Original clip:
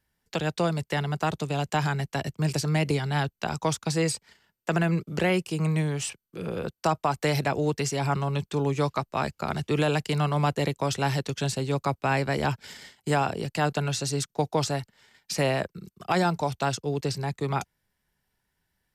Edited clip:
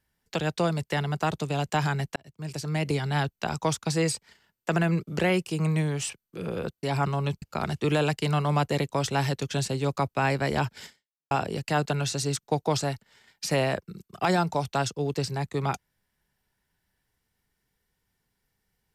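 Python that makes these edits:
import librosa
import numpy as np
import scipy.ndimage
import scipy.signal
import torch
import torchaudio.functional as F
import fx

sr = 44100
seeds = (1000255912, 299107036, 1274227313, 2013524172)

y = fx.edit(x, sr, fx.fade_in_span(start_s=2.16, length_s=0.9),
    fx.cut(start_s=6.83, length_s=1.09),
    fx.cut(start_s=8.51, length_s=0.78),
    fx.fade_out_span(start_s=12.73, length_s=0.45, curve='exp'), tone=tone)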